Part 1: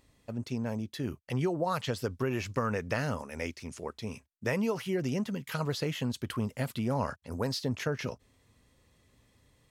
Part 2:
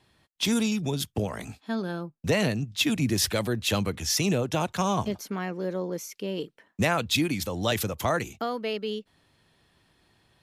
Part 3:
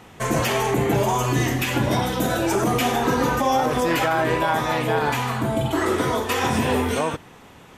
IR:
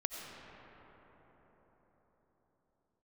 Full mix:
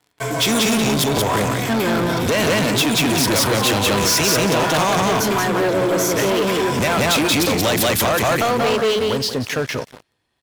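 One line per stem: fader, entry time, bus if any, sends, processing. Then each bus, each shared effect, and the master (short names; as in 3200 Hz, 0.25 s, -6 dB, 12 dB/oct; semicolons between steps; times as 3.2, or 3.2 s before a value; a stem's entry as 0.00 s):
-4.5 dB, 1.70 s, bus A, no send, echo send -14.5 dB, dry
+2.0 dB, 0.00 s, bus A, no send, echo send -6 dB, dry
-12.0 dB, 0.00 s, no bus, no send, echo send -3.5 dB, ripple EQ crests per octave 1.7, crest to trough 10 dB; flange 0.37 Hz, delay 6.9 ms, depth 1.4 ms, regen +5%; auto duck -11 dB, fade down 0.75 s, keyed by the second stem
bus A: 0.0 dB, bell 190 Hz -8 dB 0.33 oct; compressor 6:1, threshold -26 dBFS, peak gain reduction 9 dB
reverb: off
echo: feedback echo 0.18 s, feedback 21%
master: sample leveller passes 5; low shelf 140 Hz -8 dB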